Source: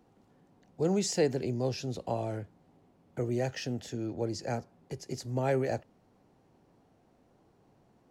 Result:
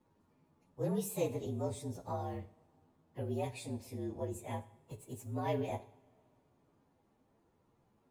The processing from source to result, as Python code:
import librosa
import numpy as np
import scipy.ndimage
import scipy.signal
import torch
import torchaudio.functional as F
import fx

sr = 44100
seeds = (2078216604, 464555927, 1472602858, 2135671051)

y = fx.partial_stretch(x, sr, pct=115)
y = fx.rev_double_slope(y, sr, seeds[0], early_s=0.55, late_s=2.8, knee_db=-22, drr_db=11.0)
y = y * 10.0 ** (-4.5 / 20.0)